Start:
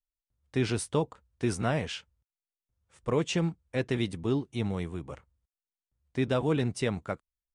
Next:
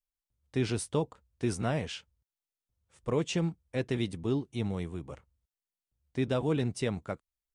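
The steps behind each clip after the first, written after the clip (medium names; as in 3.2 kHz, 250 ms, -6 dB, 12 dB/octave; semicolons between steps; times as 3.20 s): peaking EQ 1.5 kHz -3 dB 1.8 oct; trim -1.5 dB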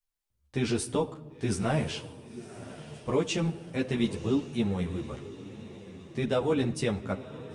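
echo that smears into a reverb 1001 ms, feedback 51%, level -15 dB; on a send at -13.5 dB: reverberation RT60 1.2 s, pre-delay 5 ms; on the sum: three-phase chorus; trim +6 dB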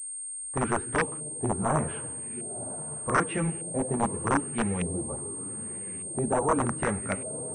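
integer overflow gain 19.5 dB; LFO low-pass saw up 0.83 Hz 590–2400 Hz; class-D stage that switches slowly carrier 8.6 kHz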